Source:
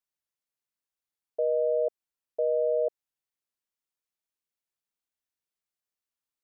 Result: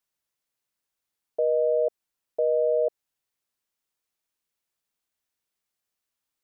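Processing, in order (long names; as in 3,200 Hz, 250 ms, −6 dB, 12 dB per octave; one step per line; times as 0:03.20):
brickwall limiter −23 dBFS, peak gain reduction 3.5 dB
level +6.5 dB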